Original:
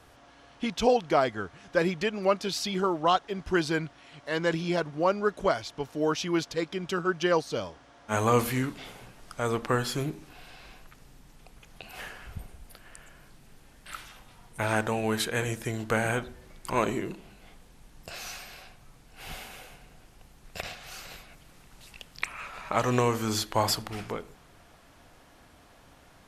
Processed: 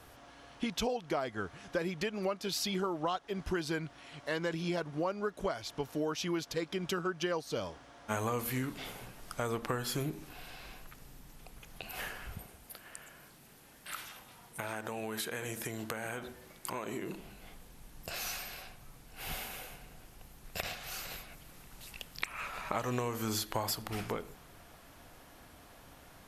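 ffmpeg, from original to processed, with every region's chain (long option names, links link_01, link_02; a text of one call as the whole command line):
ffmpeg -i in.wav -filter_complex "[0:a]asettb=1/sr,asplit=3[link_01][link_02][link_03];[link_01]atrim=end=12.354[link_04];[link_02]atrim=start=12.35:end=17.15,asetpts=PTS-STARTPTS,afade=type=in:duration=0.004:curve=qsin,afade=type=out:start_time=4.796:duration=0.004:curve=qsin,highpass=frequency=190:poles=1,acompressor=threshold=-34dB:ratio=6:attack=3.2:release=140:knee=1:detection=peak[link_05];[link_03]atrim=start=17.146[link_06];[link_04][link_05]acrossfade=duration=0.004:curve1=hsin:curve2=qsin[link_07];[link_07][link_06]acrossfade=duration=0.004:curve1=qsin:curve2=hsin,equalizer=frequency=13000:width_type=o:width=0.55:gain=9,acompressor=threshold=-31dB:ratio=6" out.wav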